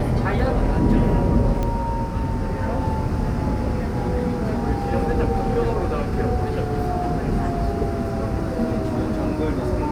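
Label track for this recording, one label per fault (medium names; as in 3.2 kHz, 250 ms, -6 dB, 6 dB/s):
1.630000	1.630000	pop -13 dBFS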